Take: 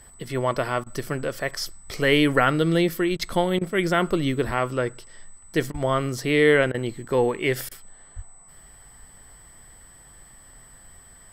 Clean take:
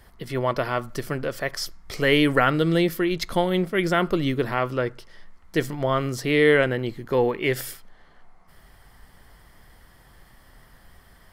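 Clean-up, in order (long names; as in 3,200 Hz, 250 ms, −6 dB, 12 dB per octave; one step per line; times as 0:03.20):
notch filter 8,000 Hz, Q 30
high-pass at the plosives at 0:04.45/0:05.72/0:08.15
repair the gap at 0:00.84/0:03.17/0:03.59/0:05.72/0:06.72/0:07.69, 22 ms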